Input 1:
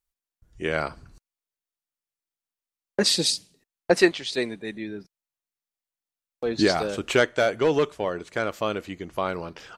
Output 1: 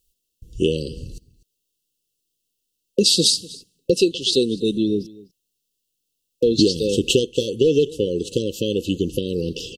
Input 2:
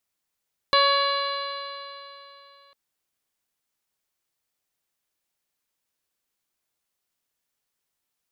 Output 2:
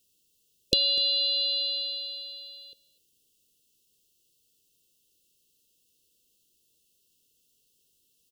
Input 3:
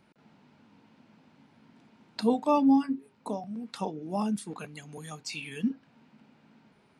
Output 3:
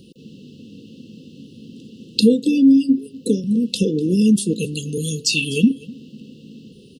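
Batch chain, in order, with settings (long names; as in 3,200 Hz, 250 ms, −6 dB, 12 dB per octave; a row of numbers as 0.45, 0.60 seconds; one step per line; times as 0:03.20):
downward compressor 4 to 1, threshold −30 dBFS
linear-phase brick-wall band-stop 540–2,600 Hz
single-tap delay 248 ms −21.5 dB
normalise the peak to −2 dBFS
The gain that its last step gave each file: +15.5, +11.5, +19.5 decibels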